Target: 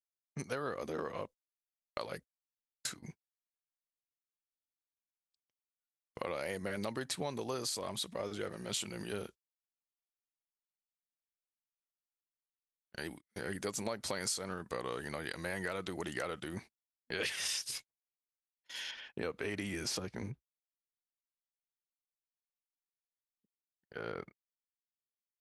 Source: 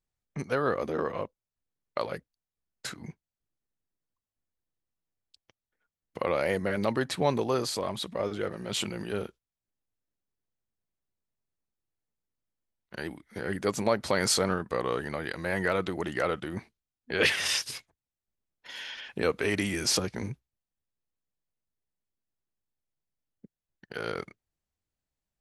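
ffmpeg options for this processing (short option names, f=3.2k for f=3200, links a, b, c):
-af "agate=range=-26dB:threshold=-43dB:ratio=16:detection=peak,asetnsamples=n=441:p=0,asendcmd='18.91 equalizer g -2;20.31 equalizer g -12',equalizer=f=8.6k:w=0.44:g=10.5,acompressor=threshold=-28dB:ratio=6,volume=-6dB"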